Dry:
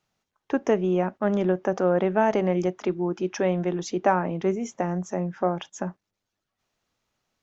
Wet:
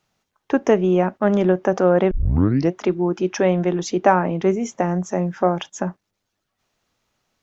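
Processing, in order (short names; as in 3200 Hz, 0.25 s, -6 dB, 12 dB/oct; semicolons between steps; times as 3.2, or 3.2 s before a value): 2.11 tape start 0.61 s; 5.15–5.63 high shelf 5900 Hz +9.5 dB; gain +6 dB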